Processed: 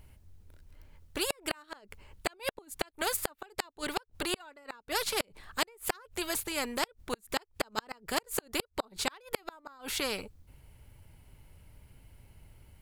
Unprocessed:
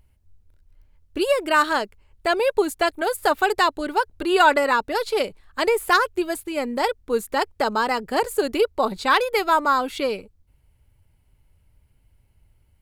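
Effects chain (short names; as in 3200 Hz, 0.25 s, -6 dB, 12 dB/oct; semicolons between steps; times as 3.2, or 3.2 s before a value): flipped gate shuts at -12 dBFS, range -42 dB; spectral compressor 2:1; gain +1 dB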